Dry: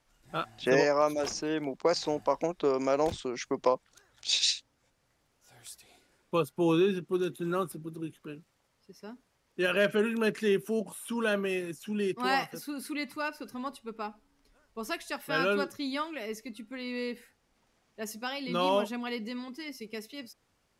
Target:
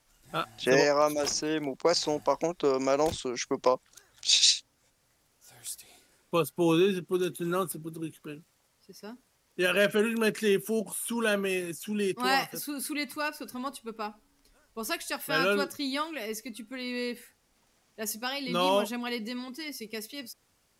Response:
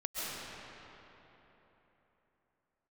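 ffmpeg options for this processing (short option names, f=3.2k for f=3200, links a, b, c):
-af "aemphasis=mode=production:type=cd,volume=1.5dB"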